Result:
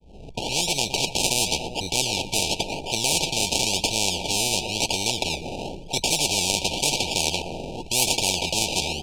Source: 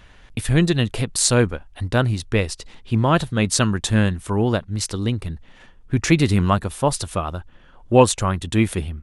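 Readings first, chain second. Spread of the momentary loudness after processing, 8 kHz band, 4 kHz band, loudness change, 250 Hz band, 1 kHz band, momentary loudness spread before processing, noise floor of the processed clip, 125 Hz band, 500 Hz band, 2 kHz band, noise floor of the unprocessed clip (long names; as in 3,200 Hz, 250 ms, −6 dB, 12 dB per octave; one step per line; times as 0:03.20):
7 LU, +3.5 dB, +7.5 dB, −2.0 dB, −12.0 dB, −4.5 dB, 12 LU, −39 dBFS, −14.5 dB, −8.0 dB, −1.0 dB, −48 dBFS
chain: fade in at the beginning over 1.11 s
EQ curve with evenly spaced ripples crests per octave 0.76, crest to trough 11 dB
in parallel at 0 dB: downward compressor, threshold −28 dBFS, peak gain reduction 20.5 dB
on the sum: transient designer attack −4 dB, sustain +2 dB
sample-and-hold swept by an LFO 31×, swing 60% 0.95 Hz
pitch vibrato 0.33 Hz 10 cents
linear-phase brick-wall band-stop 940–2,300 Hz
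high-frequency loss of the air 79 metres
on a send: repeating echo 118 ms, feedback 37%, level −20 dB
on the sum: every bin compressed towards the loudest bin 10 to 1
level −1 dB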